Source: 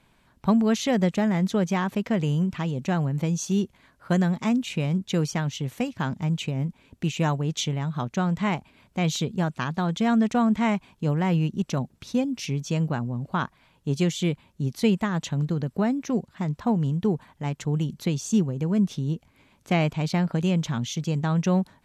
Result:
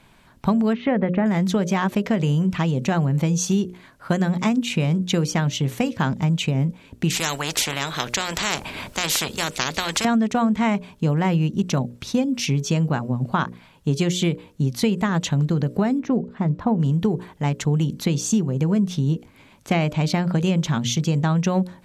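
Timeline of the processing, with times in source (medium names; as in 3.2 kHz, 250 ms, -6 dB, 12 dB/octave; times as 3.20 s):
0.73–1.26 s: low-pass 2.3 kHz 24 dB/octave
7.10–10.05 s: spectrum-flattening compressor 4:1
16.00–16.80 s: low-pass 1.1 kHz 6 dB/octave
whole clip: hum notches 60/120/180/240/300/360/420/480/540/600 Hz; compression, threshold -25 dBFS; trim +8.5 dB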